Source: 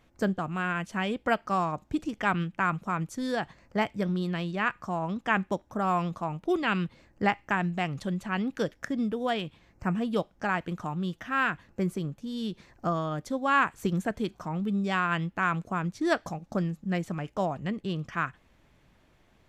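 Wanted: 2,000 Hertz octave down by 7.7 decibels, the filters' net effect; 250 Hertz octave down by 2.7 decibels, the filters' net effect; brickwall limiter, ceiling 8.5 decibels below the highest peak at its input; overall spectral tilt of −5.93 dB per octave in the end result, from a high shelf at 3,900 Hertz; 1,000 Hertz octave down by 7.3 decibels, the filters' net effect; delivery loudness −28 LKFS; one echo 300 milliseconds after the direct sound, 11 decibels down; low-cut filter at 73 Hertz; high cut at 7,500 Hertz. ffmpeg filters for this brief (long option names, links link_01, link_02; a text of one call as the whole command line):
ffmpeg -i in.wav -af "highpass=73,lowpass=7500,equalizer=frequency=250:width_type=o:gain=-3.5,equalizer=frequency=1000:width_type=o:gain=-7.5,equalizer=frequency=2000:width_type=o:gain=-6.5,highshelf=frequency=3900:gain=-3,alimiter=limit=-24dB:level=0:latency=1,aecho=1:1:300:0.282,volume=7.5dB" out.wav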